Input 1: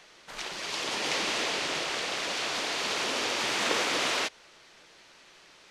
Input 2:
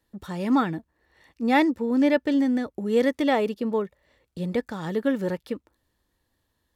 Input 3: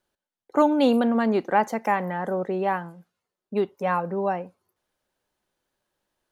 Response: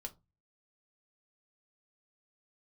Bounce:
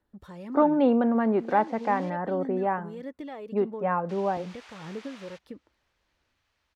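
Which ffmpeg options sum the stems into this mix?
-filter_complex "[0:a]highpass=770,adelay=1100,volume=0.126,asplit=3[s0][s1][s2];[s0]atrim=end=2.1,asetpts=PTS-STARTPTS,afade=t=out:st=2.096:d=0.004:c=hsin[s3];[s1]atrim=start=2.1:end=4.09,asetpts=PTS-STARTPTS,volume=0[s4];[s2]atrim=start=4.09,asetpts=PTS-STARTPTS,afade=t=in:d=0.004:c=hsin[s5];[s3][s4][s5]concat=n=3:v=0:a=1[s6];[1:a]acompressor=threshold=0.0251:ratio=3,aphaser=in_gain=1:out_gain=1:delay=2:decay=0.35:speed=1.6:type=sinusoidal,volume=0.422[s7];[2:a]lowpass=2100,volume=0.841[s8];[s6][s7][s8]amix=inputs=3:normalize=0,highshelf=f=3000:g=-8"

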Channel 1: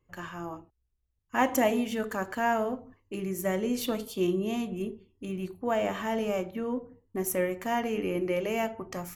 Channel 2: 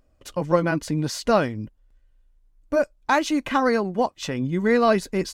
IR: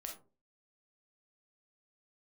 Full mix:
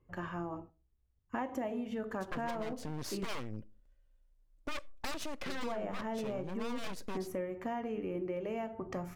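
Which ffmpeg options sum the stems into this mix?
-filter_complex "[0:a]lowpass=f=1100:p=1,volume=1.33,asplit=3[s0][s1][s2];[s0]atrim=end=3.25,asetpts=PTS-STARTPTS,afade=t=out:st=3.246:d=0.004:c=hsin[s3];[s1]atrim=start=3.25:end=5.46,asetpts=PTS-STARTPTS,volume=0[s4];[s2]atrim=start=5.46,asetpts=PTS-STARTPTS,afade=t=in:d=0.004:c=hsin[s5];[s3][s4][s5]concat=n=3:v=0:a=1,asplit=2[s6][s7];[s7]volume=0.224[s8];[1:a]equalizer=f=560:w=4.4:g=7,aeval=exprs='0.708*(cos(1*acos(clip(val(0)/0.708,-1,1)))-cos(1*PI/2))+0.224*(cos(8*acos(clip(val(0)/0.708,-1,1)))-cos(8*PI/2))':c=same,asoftclip=type=hard:threshold=0.126,adelay=1950,volume=0.355,asplit=2[s9][s10];[s10]volume=0.158[s11];[2:a]atrim=start_sample=2205[s12];[s8][s11]amix=inputs=2:normalize=0[s13];[s13][s12]afir=irnorm=-1:irlink=0[s14];[s6][s9][s14]amix=inputs=3:normalize=0,acompressor=threshold=0.0178:ratio=6"

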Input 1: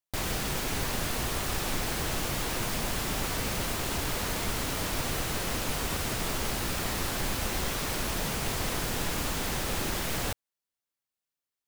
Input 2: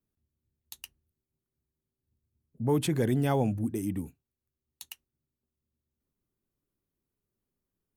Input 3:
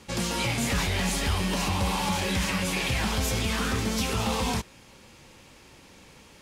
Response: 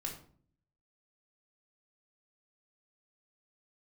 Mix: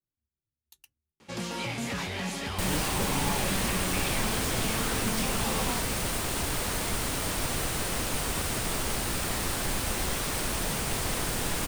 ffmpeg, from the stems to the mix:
-filter_complex "[0:a]equalizer=f=8900:t=o:w=0.26:g=7,adelay=2450,volume=1.06[s0];[1:a]asplit=2[s1][s2];[s2]adelay=2.9,afreqshift=-2.6[s3];[s1][s3]amix=inputs=2:normalize=1,volume=0.398[s4];[2:a]highpass=120,highshelf=f=5700:g=-6.5,adelay=1200,volume=0.596[s5];[s0][s4][s5]amix=inputs=3:normalize=0"

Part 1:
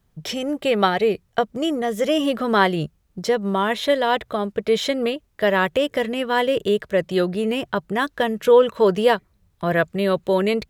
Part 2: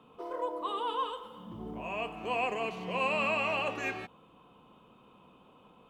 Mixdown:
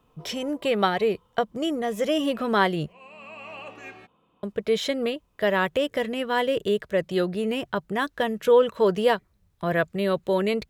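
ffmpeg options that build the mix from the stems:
-filter_complex "[0:a]volume=0.631,asplit=3[s0][s1][s2];[s0]atrim=end=2.93,asetpts=PTS-STARTPTS,afade=t=out:st=2.926:d=0.004:c=hsin[s3];[s1]atrim=start=2.93:end=4.43,asetpts=PTS-STARTPTS,volume=0[s4];[s2]atrim=start=4.43,asetpts=PTS-STARTPTS,afade=t=in:d=0.004:c=hsin[s5];[s3][s4][s5]concat=n=3:v=0:a=1,asplit=2[s6][s7];[1:a]volume=0.447[s8];[s7]apad=whole_len=260145[s9];[s8][s9]sidechaincompress=threshold=0.02:ratio=10:attack=26:release=760[s10];[s6][s10]amix=inputs=2:normalize=0"

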